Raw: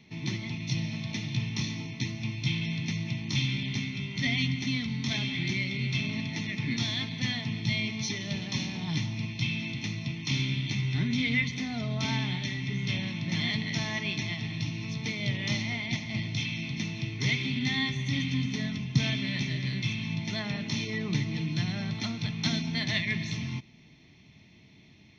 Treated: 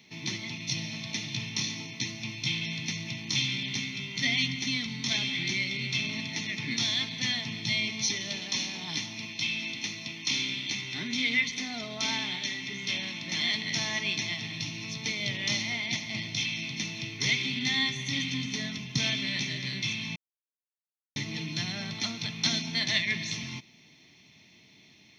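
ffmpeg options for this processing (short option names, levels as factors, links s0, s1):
-filter_complex "[0:a]asettb=1/sr,asplit=3[s0][s1][s2];[s0]atrim=end=8.294[s3];[s1]atrim=start=8.29:end=13.65,asetpts=PTS-STARTPTS,afade=t=in:d=0.004:c=qsin,afade=t=out:st=5.356:d=0.004:c=qsin,equalizer=f=130:t=o:w=0.77:g=-10.5[s4];[s2]atrim=start=13.646[s5];[s3][s4]acrossfade=d=0.004:c1=hsin:c2=qsin[s6];[s6][s5]acrossfade=d=0.004:c1=qsin:c2=hsin,asplit=3[s7][s8][s9];[s7]atrim=end=20.16,asetpts=PTS-STARTPTS,afade=t=out:st=20.156:d=0.004:c=hsin[s10];[s8]atrim=start=20.16:end=21.16,asetpts=PTS-STARTPTS,volume=0[s11];[s9]atrim=start=21.16,asetpts=PTS-STARTPTS,afade=t=in:d=0.004:c=hsin[s12];[s10][s11][s12]concat=n=3:v=0:a=1,highpass=f=290:p=1,highshelf=f=4500:g=11.5"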